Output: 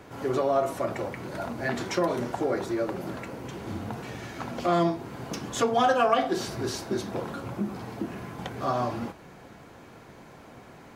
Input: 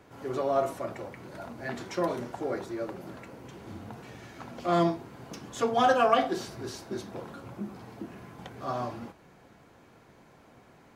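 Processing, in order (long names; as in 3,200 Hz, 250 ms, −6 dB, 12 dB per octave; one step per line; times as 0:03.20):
downward compressor 2 to 1, threshold −33 dBFS, peak gain reduction 9 dB
level +8 dB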